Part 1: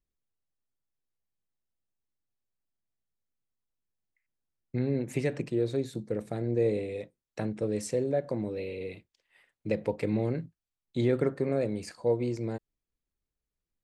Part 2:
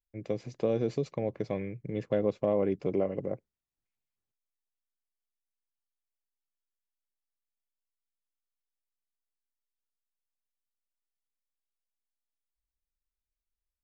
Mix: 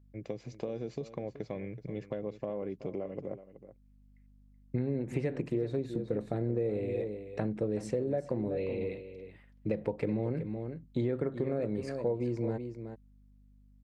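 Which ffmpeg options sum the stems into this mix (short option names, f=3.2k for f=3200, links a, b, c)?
-filter_complex "[0:a]lowpass=f=1.6k:p=1,aeval=exprs='val(0)+0.000794*(sin(2*PI*50*n/s)+sin(2*PI*2*50*n/s)/2+sin(2*PI*3*50*n/s)/3+sin(2*PI*4*50*n/s)/4+sin(2*PI*5*50*n/s)/5)':c=same,volume=3dB,asplit=2[a][b];[b]volume=-12dB[c];[1:a]acompressor=threshold=-32dB:ratio=5,volume=-1.5dB,asplit=3[d][e][f];[e]volume=-14dB[g];[f]apad=whole_len=610267[h];[a][h]sidechaincompress=threshold=-43dB:ratio=8:attack=16:release=802[i];[c][g]amix=inputs=2:normalize=0,aecho=0:1:376:1[j];[i][d][j]amix=inputs=3:normalize=0,acompressor=threshold=-28dB:ratio=6"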